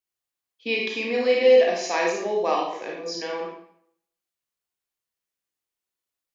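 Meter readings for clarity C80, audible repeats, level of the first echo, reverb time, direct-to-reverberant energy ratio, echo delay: 5.5 dB, no echo audible, no echo audible, 0.65 s, −2.0 dB, no echo audible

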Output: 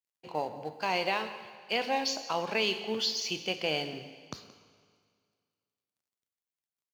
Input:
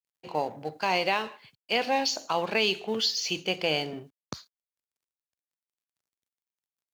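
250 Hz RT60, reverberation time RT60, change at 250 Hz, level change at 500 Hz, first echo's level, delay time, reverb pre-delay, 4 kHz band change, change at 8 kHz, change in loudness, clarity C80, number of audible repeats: 2.1 s, 2.0 s, −3.5 dB, −3.5 dB, −18.0 dB, 174 ms, 19 ms, −3.5 dB, −3.5 dB, −3.5 dB, 11.5 dB, 1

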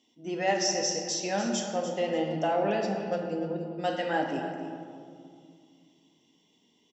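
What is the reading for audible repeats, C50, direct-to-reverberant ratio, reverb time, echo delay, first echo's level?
2, 3.5 dB, 1.0 dB, 2.3 s, 293 ms, −12.0 dB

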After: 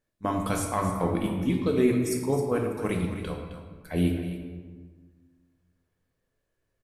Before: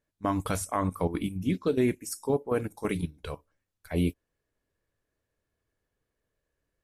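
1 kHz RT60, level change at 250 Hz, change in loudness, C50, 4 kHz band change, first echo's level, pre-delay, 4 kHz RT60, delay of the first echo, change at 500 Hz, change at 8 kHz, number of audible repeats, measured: 1.5 s, +3.5 dB, +2.5 dB, 3.0 dB, +2.0 dB, −11.0 dB, 4 ms, 0.95 s, 264 ms, +2.5 dB, +1.5 dB, 1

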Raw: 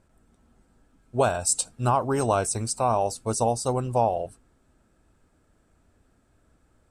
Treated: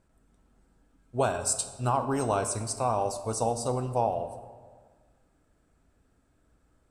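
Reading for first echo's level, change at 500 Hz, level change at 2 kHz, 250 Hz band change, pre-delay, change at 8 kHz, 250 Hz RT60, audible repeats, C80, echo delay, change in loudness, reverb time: no echo audible, −4.0 dB, −4.0 dB, −3.5 dB, 4 ms, −4.0 dB, 1.7 s, no echo audible, 12.0 dB, no echo audible, −4.0 dB, 1.6 s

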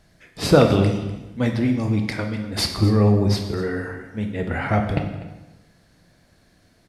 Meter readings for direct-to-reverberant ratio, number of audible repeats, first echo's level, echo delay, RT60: 4.0 dB, 1, −17.5 dB, 248 ms, 1.1 s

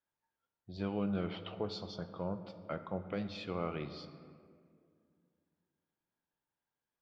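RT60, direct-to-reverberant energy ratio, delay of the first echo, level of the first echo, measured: 2.1 s, 9.5 dB, no echo audible, no echo audible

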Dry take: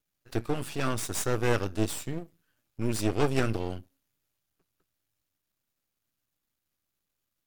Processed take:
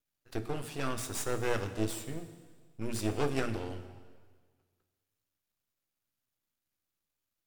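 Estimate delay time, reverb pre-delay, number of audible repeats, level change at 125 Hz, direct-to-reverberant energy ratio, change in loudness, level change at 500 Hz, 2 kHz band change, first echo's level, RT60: no echo audible, 5 ms, no echo audible, −6.5 dB, 9.0 dB, −5.0 dB, −4.5 dB, −4.5 dB, no echo audible, 1.6 s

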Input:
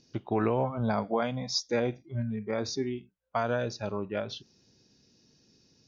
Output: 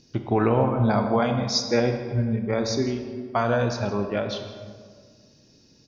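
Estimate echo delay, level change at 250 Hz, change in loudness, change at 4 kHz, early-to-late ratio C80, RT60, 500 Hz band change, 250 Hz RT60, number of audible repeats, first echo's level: 164 ms, +8.0 dB, +7.0 dB, +6.0 dB, 8.0 dB, 1.8 s, +6.5 dB, 2.1 s, 1, −16.5 dB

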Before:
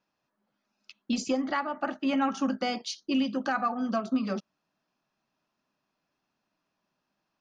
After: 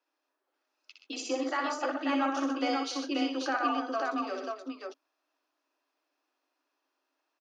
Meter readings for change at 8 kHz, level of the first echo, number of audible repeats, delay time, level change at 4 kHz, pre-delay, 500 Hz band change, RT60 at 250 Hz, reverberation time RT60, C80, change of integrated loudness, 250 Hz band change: can't be measured, −4.5 dB, 4, 61 ms, 0.0 dB, no reverb audible, 0.0 dB, no reverb audible, no reverb audible, no reverb audible, −2.0 dB, −4.0 dB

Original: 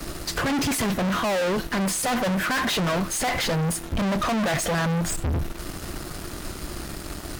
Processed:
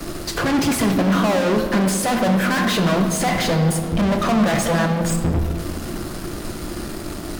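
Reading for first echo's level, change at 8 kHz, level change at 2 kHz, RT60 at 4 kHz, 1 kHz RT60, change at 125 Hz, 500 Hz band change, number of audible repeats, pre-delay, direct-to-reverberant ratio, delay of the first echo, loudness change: no echo audible, +2.0 dB, +3.0 dB, 1.2 s, 1.9 s, +6.5 dB, +6.0 dB, no echo audible, 3 ms, 5.0 dB, no echo audible, +5.5 dB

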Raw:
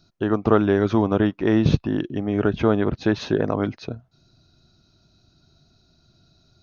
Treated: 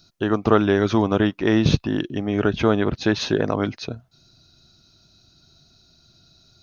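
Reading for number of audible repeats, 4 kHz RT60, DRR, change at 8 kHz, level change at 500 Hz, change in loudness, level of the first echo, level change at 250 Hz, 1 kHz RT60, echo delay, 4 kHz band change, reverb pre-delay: no echo audible, no reverb audible, no reverb audible, can't be measured, +0.5 dB, +0.5 dB, no echo audible, 0.0 dB, no reverb audible, no echo audible, +7.0 dB, no reverb audible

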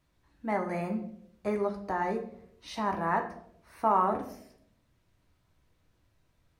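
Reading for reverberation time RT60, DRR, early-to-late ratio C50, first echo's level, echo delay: 0.70 s, 2.5 dB, 9.5 dB, no echo audible, no echo audible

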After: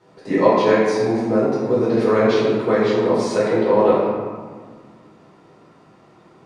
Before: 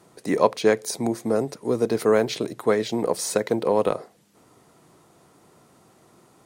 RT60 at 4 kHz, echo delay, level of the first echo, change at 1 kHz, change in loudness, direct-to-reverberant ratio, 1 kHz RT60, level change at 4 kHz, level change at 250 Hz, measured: 0.95 s, no echo audible, no echo audible, +6.5 dB, +5.5 dB, −9.0 dB, 1.7 s, +1.0 dB, +6.5 dB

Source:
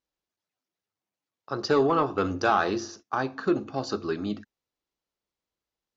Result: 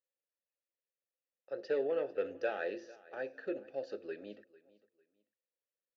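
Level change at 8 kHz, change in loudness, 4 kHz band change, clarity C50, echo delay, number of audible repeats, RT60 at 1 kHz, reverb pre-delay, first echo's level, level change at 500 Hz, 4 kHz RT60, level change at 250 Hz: can't be measured, −11.5 dB, −19.5 dB, no reverb audible, 449 ms, 2, no reverb audible, no reverb audible, −21.0 dB, −8.5 dB, no reverb audible, −18.0 dB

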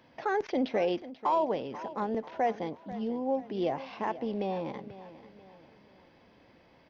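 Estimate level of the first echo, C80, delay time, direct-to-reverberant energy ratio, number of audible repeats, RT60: −15.5 dB, no reverb audible, 488 ms, no reverb audible, 3, no reverb audible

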